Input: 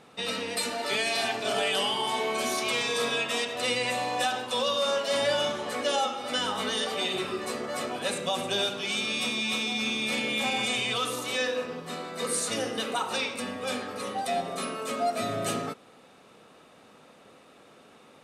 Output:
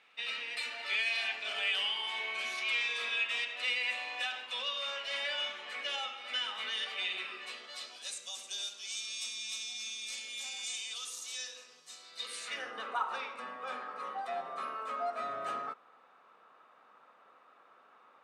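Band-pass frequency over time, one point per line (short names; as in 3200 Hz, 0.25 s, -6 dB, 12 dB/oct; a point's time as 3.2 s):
band-pass, Q 2.2
7.37 s 2400 Hz
8.14 s 6300 Hz
11.99 s 6300 Hz
12.78 s 1200 Hz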